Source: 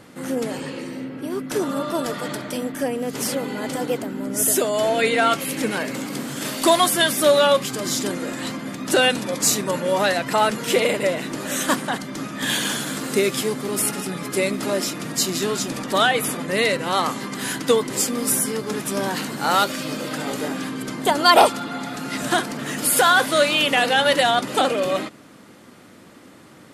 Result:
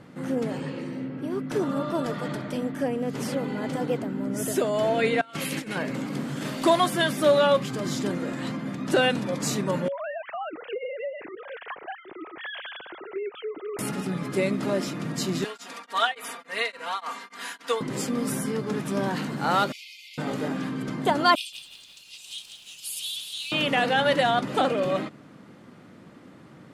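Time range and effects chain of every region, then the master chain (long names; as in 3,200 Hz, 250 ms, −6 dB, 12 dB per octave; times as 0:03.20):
0:05.21–0:05.76: compressor whose output falls as the input rises −27 dBFS, ratio −0.5 + tilt shelving filter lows −5 dB, about 1,500 Hz
0:09.88–0:13.79: three sine waves on the formant tracks + downward compressor, threshold −26 dBFS
0:15.44–0:17.81: high-pass filter 870 Hz + comb filter 4.3 ms, depth 75% + tremolo along a rectified sine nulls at 3.5 Hz
0:19.72–0:20.18: Chebyshev high-pass filter 2,100 Hz, order 10 + parametric band 8,600 Hz −8.5 dB 0.47 octaves
0:21.35–0:23.52: Butterworth high-pass 2,600 Hz 72 dB per octave + feedback echo at a low word length 172 ms, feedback 55%, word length 7 bits, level −7 dB
whole clip: low-pass filter 2,500 Hz 6 dB per octave; parametric band 150 Hz +6.5 dB 0.98 octaves; level −3.5 dB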